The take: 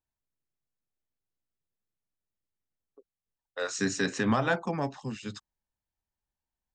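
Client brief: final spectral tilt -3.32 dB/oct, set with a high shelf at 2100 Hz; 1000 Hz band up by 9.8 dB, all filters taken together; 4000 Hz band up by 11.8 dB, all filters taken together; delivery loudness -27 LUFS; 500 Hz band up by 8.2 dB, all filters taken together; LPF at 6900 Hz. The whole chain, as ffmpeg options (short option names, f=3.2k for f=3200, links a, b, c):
-af "lowpass=6.9k,equalizer=f=500:t=o:g=7,equalizer=f=1k:t=o:g=8.5,highshelf=f=2.1k:g=7,equalizer=f=4k:t=o:g=7.5,volume=-3.5dB"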